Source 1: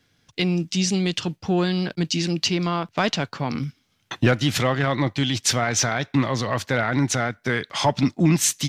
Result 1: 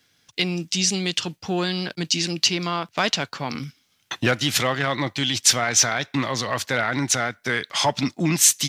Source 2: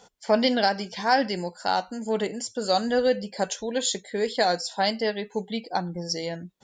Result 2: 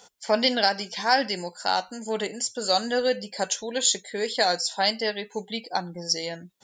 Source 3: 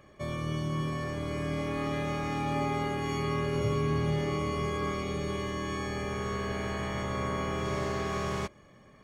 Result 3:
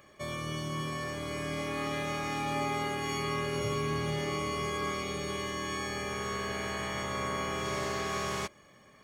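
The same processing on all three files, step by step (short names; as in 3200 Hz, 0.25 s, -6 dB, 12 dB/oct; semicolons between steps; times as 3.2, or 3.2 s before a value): tilt +2 dB/oct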